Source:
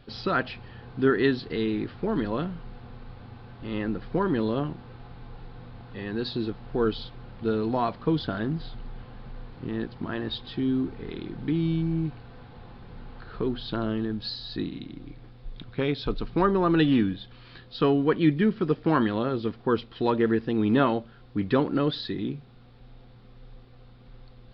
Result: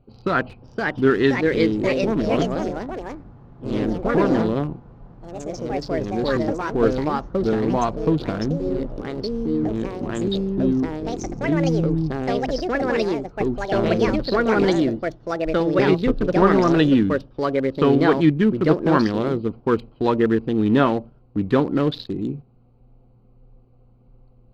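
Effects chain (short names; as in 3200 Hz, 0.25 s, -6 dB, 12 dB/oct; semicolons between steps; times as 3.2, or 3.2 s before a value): Wiener smoothing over 25 samples; gate -38 dBFS, range -8 dB; echoes that change speed 0.56 s, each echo +3 st, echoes 3; gain +5 dB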